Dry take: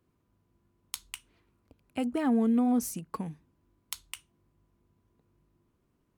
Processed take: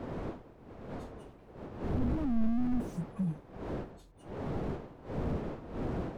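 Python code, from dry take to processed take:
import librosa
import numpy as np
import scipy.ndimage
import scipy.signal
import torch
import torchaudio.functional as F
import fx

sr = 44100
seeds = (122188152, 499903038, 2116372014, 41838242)

y = fx.hpss_only(x, sr, part='harmonic')
y = fx.dmg_wind(y, sr, seeds[0], corner_hz=480.0, level_db=-42.0)
y = fx.slew_limit(y, sr, full_power_hz=3.9)
y = y * 10.0 ** (6.0 / 20.0)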